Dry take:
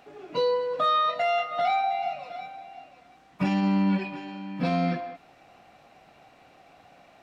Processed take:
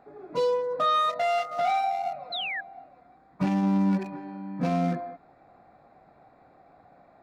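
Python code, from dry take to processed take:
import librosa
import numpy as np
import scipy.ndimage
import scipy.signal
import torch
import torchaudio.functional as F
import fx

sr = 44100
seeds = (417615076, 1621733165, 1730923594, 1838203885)

y = fx.wiener(x, sr, points=15)
y = fx.spec_paint(y, sr, seeds[0], shape='fall', start_s=2.32, length_s=0.29, low_hz=1600.0, high_hz=4200.0, level_db=-32.0)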